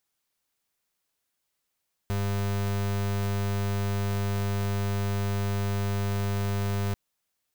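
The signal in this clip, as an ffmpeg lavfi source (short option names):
-f lavfi -i "aevalsrc='0.0422*(2*lt(mod(100*t,1),0.36)-1)':d=4.84:s=44100"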